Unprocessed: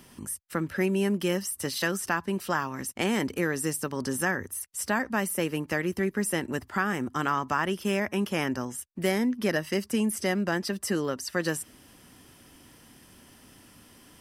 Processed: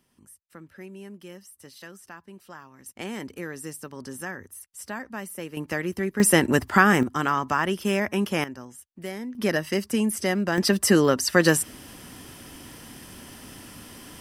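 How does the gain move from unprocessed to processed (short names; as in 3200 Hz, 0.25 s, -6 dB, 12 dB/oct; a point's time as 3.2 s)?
-16 dB
from 2.86 s -7.5 dB
from 5.57 s 0 dB
from 6.2 s +10.5 dB
from 7.03 s +3 dB
from 8.44 s -8.5 dB
from 9.35 s +2.5 dB
from 10.58 s +10 dB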